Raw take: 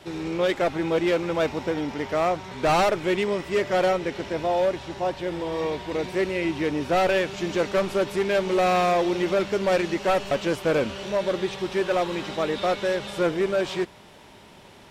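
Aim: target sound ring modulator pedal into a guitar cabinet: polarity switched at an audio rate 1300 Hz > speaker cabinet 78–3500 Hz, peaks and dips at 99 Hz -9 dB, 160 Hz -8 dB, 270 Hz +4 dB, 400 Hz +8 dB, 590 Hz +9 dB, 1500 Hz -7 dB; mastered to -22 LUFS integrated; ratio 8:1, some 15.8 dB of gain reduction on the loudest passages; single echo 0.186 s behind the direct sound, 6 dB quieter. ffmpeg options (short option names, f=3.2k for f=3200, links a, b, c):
-af "acompressor=threshold=-36dB:ratio=8,aecho=1:1:186:0.501,aeval=exprs='val(0)*sgn(sin(2*PI*1300*n/s))':c=same,highpass=78,equalizer=f=99:t=q:w=4:g=-9,equalizer=f=160:t=q:w=4:g=-8,equalizer=f=270:t=q:w=4:g=4,equalizer=f=400:t=q:w=4:g=8,equalizer=f=590:t=q:w=4:g=9,equalizer=f=1.5k:t=q:w=4:g=-7,lowpass=f=3.5k:w=0.5412,lowpass=f=3.5k:w=1.3066,volume=15dB"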